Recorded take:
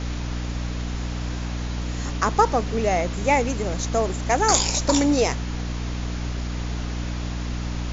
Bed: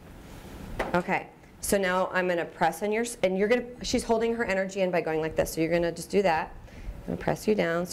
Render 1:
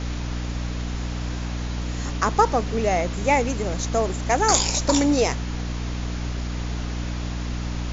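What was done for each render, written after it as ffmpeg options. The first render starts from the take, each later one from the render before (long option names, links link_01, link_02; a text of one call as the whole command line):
ffmpeg -i in.wav -af anull out.wav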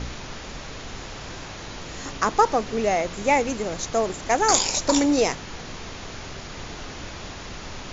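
ffmpeg -i in.wav -af "bandreject=frequency=60:width_type=h:width=4,bandreject=frequency=120:width_type=h:width=4,bandreject=frequency=180:width_type=h:width=4,bandreject=frequency=240:width_type=h:width=4,bandreject=frequency=300:width_type=h:width=4" out.wav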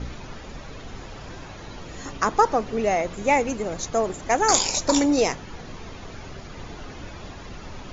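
ffmpeg -i in.wav -af "afftdn=noise_reduction=9:noise_floor=-38" out.wav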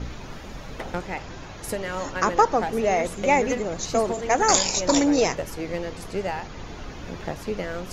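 ffmpeg -i in.wav -i bed.wav -filter_complex "[1:a]volume=-5dB[link_01];[0:a][link_01]amix=inputs=2:normalize=0" out.wav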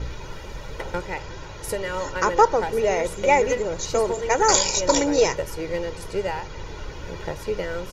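ffmpeg -i in.wav -af "aecho=1:1:2.1:0.59" out.wav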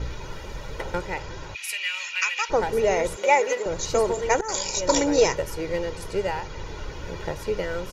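ffmpeg -i in.wav -filter_complex "[0:a]asplit=3[link_01][link_02][link_03];[link_01]afade=type=out:start_time=1.54:duration=0.02[link_04];[link_02]highpass=frequency=2500:width_type=q:width=11,afade=type=in:start_time=1.54:duration=0.02,afade=type=out:start_time=2.49:duration=0.02[link_05];[link_03]afade=type=in:start_time=2.49:duration=0.02[link_06];[link_04][link_05][link_06]amix=inputs=3:normalize=0,asettb=1/sr,asplit=3[link_07][link_08][link_09];[link_07]atrim=end=3.164[link_10];[link_08]atrim=start=3.16:end=3.66,asetpts=PTS-STARTPTS,afade=type=in:duration=0.004:curve=qsin,afade=type=out:start_time=0.496:duration=0.004:curve=qsin,highpass=470[link_11];[link_09]atrim=start=3.656[link_12];[link_10][link_11]acrossfade=duration=0.004:curve1=hsin:curve2=qsin[link_13];[link_13][link_12]acrossfade=duration=0.004:curve1=qsin:curve2=hsin,asplit=2[link_14][link_15];[link_14]atrim=end=4.41,asetpts=PTS-STARTPTS,afade=type=out:start_time=4.406:duration=0.004:curve=hsin:silence=0.0944061[link_16];[link_15]atrim=start=4.41,asetpts=PTS-STARTPTS,afade=type=in:duration=0.85:curve=qsin:silence=0.0944061[link_17];[link_16][link_17]concat=n=2:v=0:a=1" out.wav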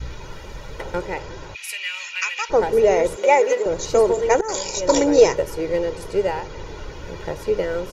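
ffmpeg -i in.wav -af "adynamicequalizer=threshold=0.02:dfrequency=430:dqfactor=0.86:tfrequency=430:tqfactor=0.86:attack=5:release=100:ratio=0.375:range=3.5:mode=boostabove:tftype=bell" out.wav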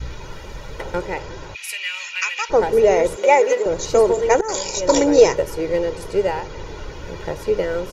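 ffmpeg -i in.wav -af "volume=1.5dB,alimiter=limit=-1dB:level=0:latency=1" out.wav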